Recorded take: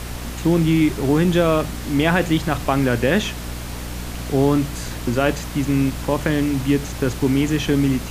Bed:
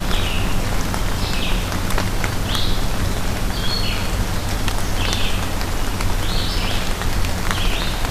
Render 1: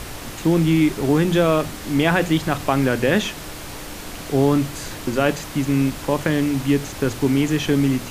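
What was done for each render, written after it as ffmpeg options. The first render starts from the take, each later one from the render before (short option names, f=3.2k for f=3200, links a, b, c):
-af "bandreject=f=60:t=h:w=6,bandreject=f=120:t=h:w=6,bandreject=f=180:t=h:w=6,bandreject=f=240:t=h:w=6"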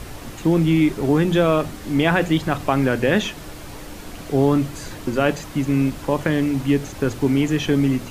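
-af "afftdn=nr=6:nf=-34"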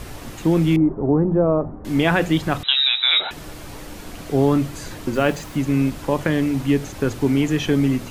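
-filter_complex "[0:a]asettb=1/sr,asplit=3[a][b][c];[a]atrim=end=0.764[d];[b]atrim=start=0.76:end=1.85,asetpts=PTS-STARTPTS,afade=t=in:d=0.004:c=qsin,afade=t=out:st=1.086:d=0.004:c=qsin,lowpass=f=1k:w=0.5412,lowpass=f=1k:w=1.3066[e];[c]atrim=start=1.846[f];[d][e]acrossfade=d=0.004:c1=hsin:c2=qsin[g];[g][f]acrossfade=d=0.004:c1=qsin:c2=hsin,asettb=1/sr,asplit=3[h][i][j];[h]atrim=end=2.634[k];[i]atrim=start=2.63:end=3.31,asetpts=PTS-STARTPTS,afade=t=in:d=0.004:c=qsin,afade=t=out:st=0.676:d=0.004:c=qsin,lowpass=f=3.4k:t=q:w=0.5098,lowpass=f=3.4k:t=q:w=0.6013,lowpass=f=3.4k:t=q:w=0.9,lowpass=f=3.4k:t=q:w=2.563,afreqshift=-4000[l];[j]atrim=start=3.306[m];[k][l]acrossfade=d=0.004:c1=hsin:c2=qsin[n];[n][m]acrossfade=d=0.004:c1=qsin:c2=hsin,asettb=1/sr,asplit=3[o][p][q];[o]atrim=end=5.144[r];[p]atrim=start=5.14:end=5.56,asetpts=PTS-STARTPTS,afade=t=in:d=0.004:c=qsin,afade=t=out:st=0.416:d=0.004:c=qsin,acrusher=bits=6:mix=0:aa=0.5[s];[q]atrim=start=5.556[t];[r][s]acrossfade=d=0.004:c1=hsin:c2=qsin[u];[u][t]acrossfade=d=0.004:c1=qsin:c2=hsin"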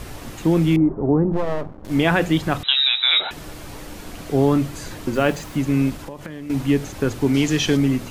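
-filter_complex "[0:a]asplit=3[a][b][c];[a]afade=t=out:st=1.32:d=0.02[d];[b]aeval=exprs='max(val(0),0)':c=same,afade=t=in:st=1.32:d=0.02,afade=t=out:st=1.9:d=0.02[e];[c]afade=t=in:st=1.9:d=0.02[f];[d][e][f]amix=inputs=3:normalize=0,asettb=1/sr,asplit=3[g][h][i];[g]atrim=end=5.954[j];[h]atrim=start=5.95:end=6.5,asetpts=PTS-STARTPTS,afade=t=in:d=0.004:c=qsin,afade=t=out:st=0.546:d=0.004:c=qsin,acompressor=threshold=-31dB:ratio=5:attack=3.2:release=140:knee=1:detection=peak[k];[i]atrim=start=6.496[l];[j][k]acrossfade=d=0.004:c1=hsin:c2=qsin[m];[m][l]acrossfade=d=0.004:c1=qsin:c2=hsin,asettb=1/sr,asplit=3[n][o][p];[n]atrim=end=7.344[q];[o]atrim=start=7.34:end=7.77,asetpts=PTS-STARTPTS,afade=t=in:d=0.004:c=qsin,afade=t=out:st=0.426:d=0.004:c=qsin,equalizer=f=5.1k:w=0.8:g=9.5[r];[p]atrim=start=7.766[s];[q][r]acrossfade=d=0.004:c1=hsin:c2=qsin[t];[t][s]acrossfade=d=0.004:c1=qsin:c2=hsin"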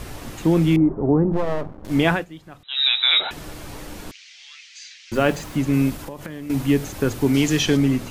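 -filter_complex "[0:a]asettb=1/sr,asplit=3[a][b][c];[a]atrim=end=4.114[d];[b]atrim=start=4.11:end=5.12,asetpts=PTS-STARTPTS,afade=t=in:d=0.004:c=qsin,afade=t=out:st=1.006:d=0.004:c=qsin,asuperpass=centerf=3700:order=8:qfactor=0.84[e];[c]atrim=start=5.116[f];[d][e]acrossfade=d=0.004:c1=hsin:c2=qsin[g];[g][f]acrossfade=d=0.004:c1=qsin:c2=hsin,asettb=1/sr,asplit=3[h][i][j];[h]atrim=end=5.734[k];[i]atrim=start=5.73:end=7.63,asetpts=PTS-STARTPTS,afade=t=in:d=0.004:c=qsin,afade=t=out:st=1.896:d=0.004:c=qsin,highshelf=f=12k:g=10.5[l];[j]atrim=start=7.626[m];[k][l]acrossfade=d=0.004:c1=hsin:c2=qsin[n];[n][m]acrossfade=d=0.004:c1=qsin:c2=hsin,asplit=3[o][p][q];[o]atrim=end=2.25,asetpts=PTS-STARTPTS,afade=t=out:st=2.09:d=0.16:silence=0.0944061[r];[p]atrim=start=2.25:end=2.69,asetpts=PTS-STARTPTS,volume=-20.5dB[s];[q]atrim=start=2.69,asetpts=PTS-STARTPTS,afade=t=in:d=0.16:silence=0.0944061[t];[r][s][t]concat=n=3:v=0:a=1"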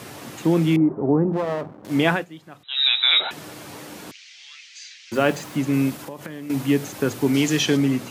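-af "highpass=f=110:w=0.5412,highpass=f=110:w=1.3066,lowshelf=f=160:g=-4.5"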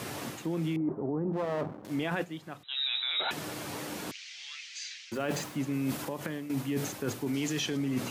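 -af "alimiter=limit=-14.5dB:level=0:latency=1:release=16,areverse,acompressor=threshold=-29dB:ratio=6,areverse"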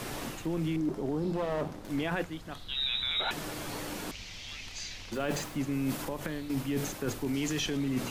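-filter_complex "[1:a]volume=-28.5dB[a];[0:a][a]amix=inputs=2:normalize=0"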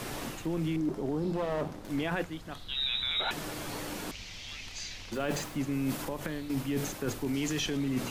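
-af anull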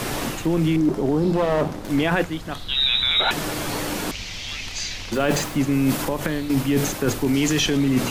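-af "volume=11.5dB"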